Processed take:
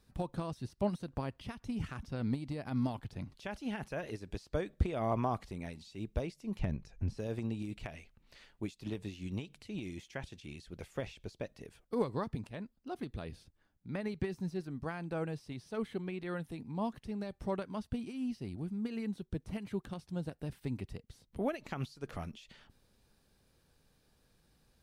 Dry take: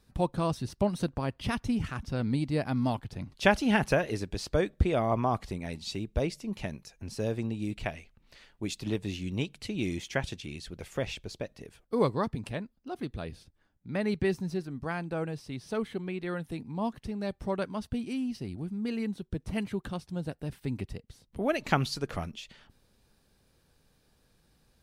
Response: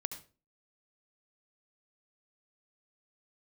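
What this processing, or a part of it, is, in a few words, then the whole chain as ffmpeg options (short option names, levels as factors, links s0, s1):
de-esser from a sidechain: -filter_complex "[0:a]asettb=1/sr,asplit=3[s0][s1][s2];[s0]atrim=end=6.594[s3];[s1]atrim=start=6.59:end=7.18,asetpts=PTS-STARTPTS,afade=t=in:d=0.004:c=qsin,afade=t=out:st=0.586:d=0.004:c=qsin,aemphasis=mode=reproduction:type=bsi[s4];[s2]atrim=start=7.176[s5];[s3][s4]acrossfade=d=0.004:c1=hsin:c2=qsin[s6];[s6][s5]acrossfade=d=0.004:c1=qsin:c2=hsin,asplit=2[s7][s8];[s8]highpass=6700,apad=whole_len=1094858[s9];[s7][s9]sidechaincompress=threshold=0.00112:ratio=5:attack=2.9:release=85,volume=0.708"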